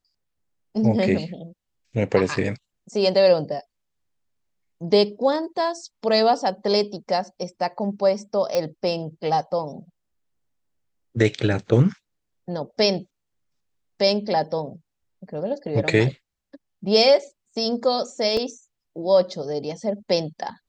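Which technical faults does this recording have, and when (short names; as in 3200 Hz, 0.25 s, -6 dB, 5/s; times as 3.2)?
8.55 pop -10 dBFS
18.37 gap 2.9 ms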